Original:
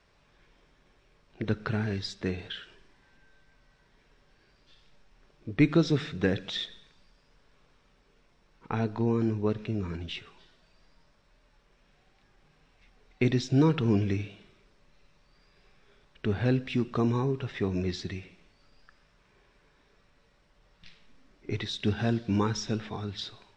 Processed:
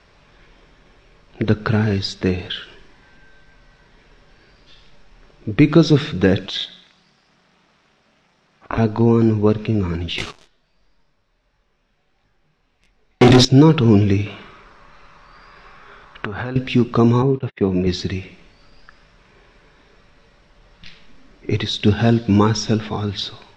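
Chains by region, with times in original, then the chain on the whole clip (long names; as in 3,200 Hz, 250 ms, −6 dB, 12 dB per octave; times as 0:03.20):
0:06.46–0:08.78: low-shelf EQ 240 Hz −12 dB + ring modulation 180 Hz
0:10.18–0:13.45: leveller curve on the samples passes 5 + micro pitch shift up and down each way 50 cents
0:14.26–0:16.56: downward compressor 8 to 1, threshold −38 dBFS + parametric band 1,200 Hz +14.5 dB 1.3 octaves
0:17.22–0:17.87: noise gate −38 dBFS, range −51 dB + dynamic equaliser 1,500 Hz, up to −5 dB, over −50 dBFS, Q 1.1 + band-pass filter 120–2,900 Hz
whole clip: low-pass filter 6,800 Hz 12 dB per octave; dynamic equaliser 1,900 Hz, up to −4 dB, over −51 dBFS, Q 2.4; boost into a limiter +13.5 dB; level −1 dB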